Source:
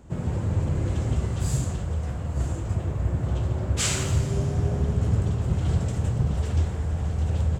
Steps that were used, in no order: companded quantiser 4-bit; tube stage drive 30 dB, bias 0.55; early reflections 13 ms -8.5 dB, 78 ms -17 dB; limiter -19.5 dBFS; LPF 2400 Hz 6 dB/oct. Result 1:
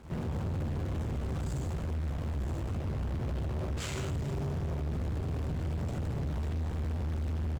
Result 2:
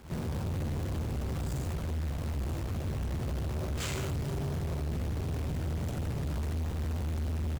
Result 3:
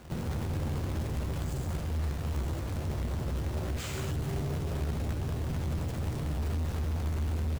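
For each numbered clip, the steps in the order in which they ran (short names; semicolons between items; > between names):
early reflections > limiter > companded quantiser > LPF > tube stage; LPF > limiter > early reflections > companded quantiser > tube stage; limiter > tube stage > LPF > companded quantiser > early reflections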